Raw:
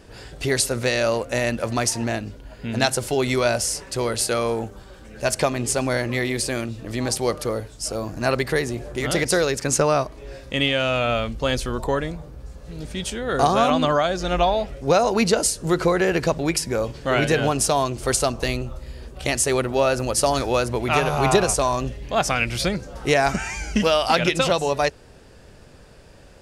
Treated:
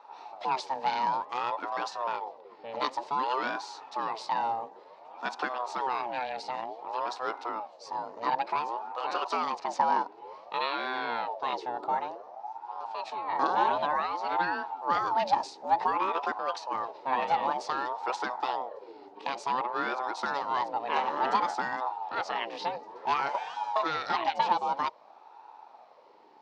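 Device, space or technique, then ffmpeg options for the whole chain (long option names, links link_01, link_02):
voice changer toy: -filter_complex "[0:a]aeval=exprs='val(0)*sin(2*PI*620*n/s+620*0.45/0.55*sin(2*PI*0.55*n/s))':channel_layout=same,highpass=430,equalizer=frequency=870:width_type=q:width=4:gain=10,equalizer=frequency=1500:width_type=q:width=4:gain=-3,equalizer=frequency=2100:width_type=q:width=4:gain=-5,equalizer=frequency=3200:width_type=q:width=4:gain=-6,lowpass=frequency=4300:width=0.5412,lowpass=frequency=4300:width=1.3066,asettb=1/sr,asplit=3[link_01][link_02][link_03];[link_01]atrim=end=11.944[link_04];[link_02]atrim=start=11.94:end=12.57,asetpts=PTS-STARTPTS,afade=type=in:duration=0.004:curve=qsin,afade=type=out:start_time=0.626:duration=0.004:curve=qsin,equalizer=frequency=5900:width=4.2:gain=8[link_05];[link_03]atrim=start=12.566[link_06];[link_04][link_05]acrossfade=duration=0.004:curve1=hsin:curve2=qsin[link_07];[link_07][link_06]acrossfade=duration=0.004:curve1=qsin:curve2=hsin,volume=-6.5dB"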